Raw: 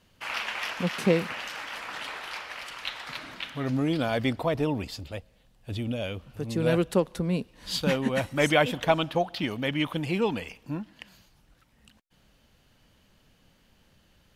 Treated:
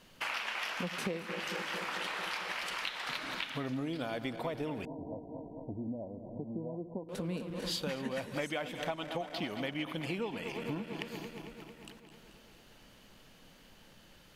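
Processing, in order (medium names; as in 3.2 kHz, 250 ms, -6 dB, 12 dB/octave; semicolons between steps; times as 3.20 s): backward echo that repeats 112 ms, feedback 81%, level -14 dB; peaking EQ 71 Hz -10.5 dB 1.6 oct; compression 8:1, threshold -39 dBFS, peak gain reduction 22 dB; 4.85–7.09 s: rippled Chebyshev low-pass 1 kHz, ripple 6 dB; trim +5 dB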